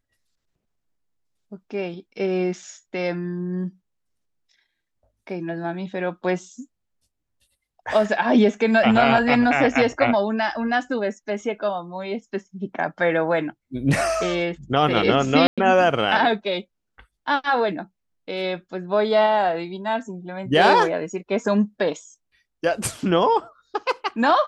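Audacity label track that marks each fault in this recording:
15.470000	15.580000	dropout 106 ms

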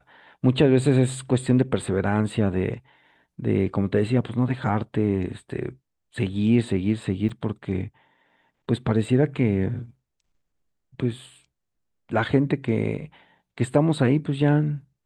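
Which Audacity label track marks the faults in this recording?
7.290000	7.300000	dropout 5.5 ms

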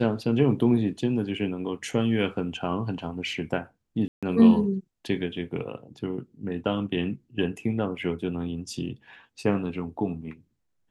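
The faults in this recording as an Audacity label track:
4.080000	4.230000	dropout 146 ms

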